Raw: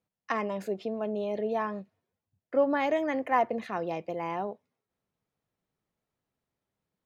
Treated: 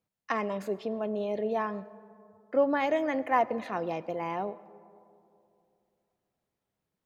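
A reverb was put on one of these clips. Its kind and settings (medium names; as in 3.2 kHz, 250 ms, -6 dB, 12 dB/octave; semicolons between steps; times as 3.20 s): algorithmic reverb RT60 2.7 s, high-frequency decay 0.3×, pre-delay 60 ms, DRR 18.5 dB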